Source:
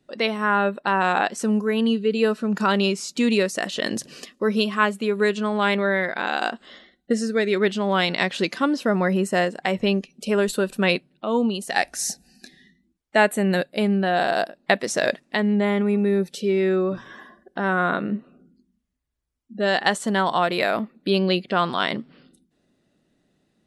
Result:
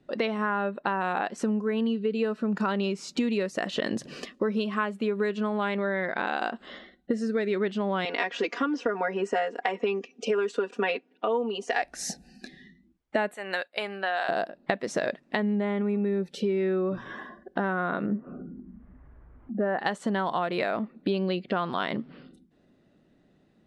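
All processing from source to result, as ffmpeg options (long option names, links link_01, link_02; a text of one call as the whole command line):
ffmpeg -i in.wav -filter_complex "[0:a]asettb=1/sr,asplit=3[link_01][link_02][link_03];[link_01]atrim=end=8.054[link_04];[link_02]atrim=start=8.05:end=11.82,asetpts=PTS-STARTPTS,afade=type=in:duration=0.004:curve=qsin,afade=type=out:start_time=3.766:duration=0.004:curve=qsin,highpass=frequency=320:width=0.5412,highpass=frequency=320:width=1.3066,equalizer=frequency=380:width_type=q:width=4:gain=5,equalizer=frequency=560:width_type=q:width=4:gain=-4,equalizer=frequency=4100:width_type=q:width=4:gain=-9,equalizer=frequency=6100:width_type=q:width=4:gain=4,lowpass=frequency=7200:width=0.5412,lowpass=frequency=7200:width=1.3066,aecho=1:1:4.2:1,atrim=end_sample=166257[link_05];[link_03]atrim=start=11.816[link_06];[link_04][link_05]acrossfade=duration=0.004:curve1=hsin:curve2=qsin[link_07];[link_07][link_06]acrossfade=duration=0.004:curve1=qsin:curve2=hsin,asettb=1/sr,asplit=3[link_08][link_09][link_10];[link_08]atrim=end=13.344[link_11];[link_09]atrim=start=13.34:end=14.29,asetpts=PTS-STARTPTS,afade=type=in:duration=0.004:curve=qsin,afade=type=out:start_time=0.946:duration=0.004:curve=qsin,highpass=940,agate=range=-7dB:threshold=-46dB:ratio=16:release=100:detection=peak[link_12];[link_10]atrim=start=14.286[link_13];[link_11][link_12]acrossfade=duration=0.004:curve1=hsin:curve2=qsin[link_14];[link_14][link_13]acrossfade=duration=0.004:curve1=qsin:curve2=hsin,asettb=1/sr,asplit=3[link_15][link_16][link_17];[link_15]atrim=end=18.064[link_18];[link_16]atrim=start=18.06:end=19.79,asetpts=PTS-STARTPTS,afade=type=in:duration=0.004:curve=qsin,afade=type=out:start_time=1.726:duration=0.004:curve=qsin,lowpass=frequency=1700:width=0.5412,lowpass=frequency=1700:width=1.3066,acompressor=mode=upward:threshold=-33dB:ratio=2.5:attack=3.2:release=140:knee=2.83:detection=peak[link_19];[link_17]atrim=start=19.786[link_20];[link_18][link_19]acrossfade=duration=0.004:curve1=hsin:curve2=qsin[link_21];[link_21][link_20]acrossfade=duration=0.004:curve1=qsin:curve2=hsin,aemphasis=mode=reproduction:type=75fm,acompressor=threshold=-28dB:ratio=6,volume=3.5dB" out.wav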